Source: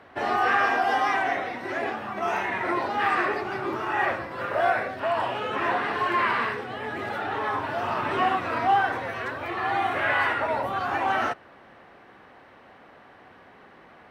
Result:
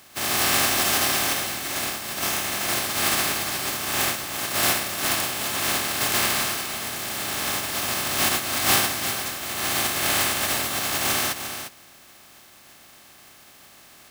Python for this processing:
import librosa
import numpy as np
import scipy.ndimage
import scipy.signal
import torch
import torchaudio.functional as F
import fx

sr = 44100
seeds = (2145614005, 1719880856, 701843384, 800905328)

p1 = fx.spec_flatten(x, sr, power=0.15)
p2 = fx.notch_comb(p1, sr, f0_hz=480.0)
p3 = p2 + fx.echo_single(p2, sr, ms=350, db=-9.0, dry=0)
y = p3 * 10.0 ** (2.5 / 20.0)